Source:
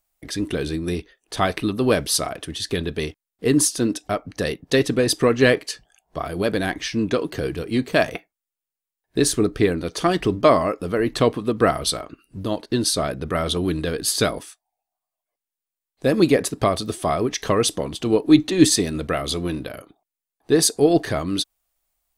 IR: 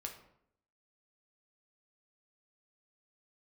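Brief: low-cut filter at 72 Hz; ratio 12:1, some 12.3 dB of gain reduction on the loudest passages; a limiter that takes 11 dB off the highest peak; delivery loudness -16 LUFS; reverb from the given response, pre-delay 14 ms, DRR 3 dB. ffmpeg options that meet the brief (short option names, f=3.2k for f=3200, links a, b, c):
-filter_complex "[0:a]highpass=72,acompressor=threshold=-20dB:ratio=12,alimiter=limit=-19dB:level=0:latency=1,asplit=2[a][b];[1:a]atrim=start_sample=2205,adelay=14[c];[b][c]afir=irnorm=-1:irlink=0,volume=-1dB[d];[a][d]amix=inputs=2:normalize=0,volume=12.5dB"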